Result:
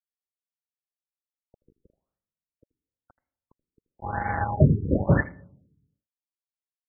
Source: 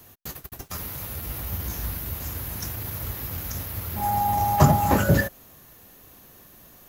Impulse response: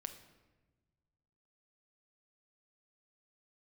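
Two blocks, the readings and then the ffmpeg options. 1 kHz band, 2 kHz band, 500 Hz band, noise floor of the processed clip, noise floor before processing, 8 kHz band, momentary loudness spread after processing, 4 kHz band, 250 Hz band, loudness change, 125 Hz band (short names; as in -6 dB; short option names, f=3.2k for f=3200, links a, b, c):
-9.5 dB, -2.5 dB, -2.0 dB, under -85 dBFS, -51 dBFS, under -40 dB, 14 LU, under -40 dB, -1.0 dB, +1.5 dB, -1.0 dB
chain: -filter_complex "[0:a]aeval=exprs='val(0)*gte(abs(val(0)),0.1)':c=same,asplit=2[a][b];[1:a]atrim=start_sample=2205,asetrate=79380,aresample=44100,adelay=80[c];[b][c]afir=irnorm=-1:irlink=0,volume=-10dB[d];[a][d]amix=inputs=2:normalize=0,afftfilt=real='re*lt(b*sr/1024,450*pow(2300/450,0.5+0.5*sin(2*PI*0.99*pts/sr)))':imag='im*lt(b*sr/1024,450*pow(2300/450,0.5+0.5*sin(2*PI*0.99*pts/sr)))':win_size=1024:overlap=0.75"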